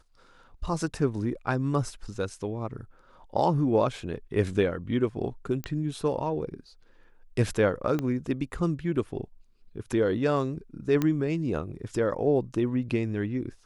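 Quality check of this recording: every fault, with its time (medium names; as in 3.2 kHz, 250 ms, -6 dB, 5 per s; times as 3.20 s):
5.64 s: pop -18 dBFS
7.99 s: pop -17 dBFS
11.02 s: pop -13 dBFS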